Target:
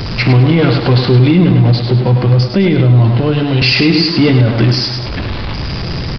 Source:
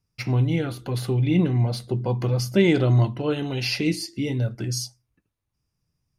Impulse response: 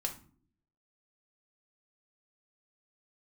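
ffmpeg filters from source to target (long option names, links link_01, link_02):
-filter_complex "[0:a]aeval=exprs='val(0)+0.5*0.0398*sgn(val(0))':channel_layout=same,asettb=1/sr,asplit=3[link_01][link_02][link_03];[link_01]atrim=end=1.514[link_04];[link_02]atrim=start=1.51:end=3.62,asetpts=PTS-STARTPTS,afade=type=in:duration=0.004:curve=qsin,afade=type=out:start_time=2.106:duration=0.004:curve=qsin,acrossover=split=160[link_05][link_06];[link_06]acompressor=threshold=-34dB:ratio=2[link_07];[link_05][link_07]amix=inputs=2:normalize=0[link_08];[link_03]atrim=start=3.616[link_09];[link_04][link_08]acrossfade=duration=0.004:curve1=hsin:curve2=qsin[link_10];[link_10][link_09]acrossfade=duration=0.004:curve1=qsin:curve2=hsin,aecho=1:1:102|204|306|408|510:0.447|0.192|0.0826|0.0355|0.0153,aresample=11025,aresample=44100,alimiter=level_in=16dB:limit=-1dB:release=50:level=0:latency=1,volume=-1dB"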